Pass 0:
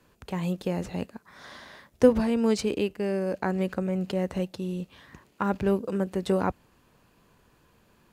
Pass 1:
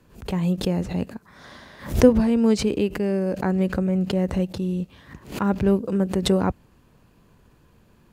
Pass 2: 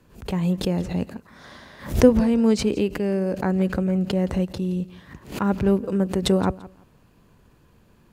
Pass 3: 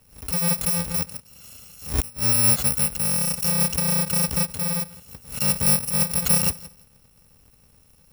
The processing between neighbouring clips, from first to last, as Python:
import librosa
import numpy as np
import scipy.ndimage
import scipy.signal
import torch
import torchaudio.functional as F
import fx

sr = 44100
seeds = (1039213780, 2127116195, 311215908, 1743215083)

y1 = fx.low_shelf(x, sr, hz=330.0, db=9.0)
y1 = fx.pre_swell(y1, sr, db_per_s=140.0)
y2 = fx.echo_feedback(y1, sr, ms=170, feedback_pct=22, wet_db=-19.5)
y3 = fx.bit_reversed(y2, sr, seeds[0], block=128)
y3 = fx.gate_flip(y3, sr, shuts_db=-8.0, range_db=-27)